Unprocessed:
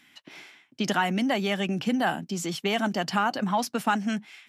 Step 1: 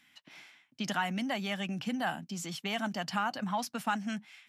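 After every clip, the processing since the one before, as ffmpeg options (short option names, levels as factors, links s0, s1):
-af "equalizer=f=390:t=o:w=0.84:g=-9,volume=0.501"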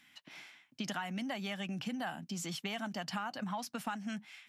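-af "acompressor=threshold=0.0141:ratio=4,volume=1.12"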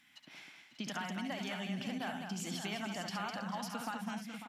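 -af "aecho=1:1:69|204|437|546|589:0.473|0.473|0.141|0.251|0.335,volume=0.75"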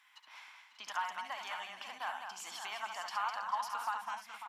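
-af "highpass=f=1000:t=q:w=5,volume=0.75"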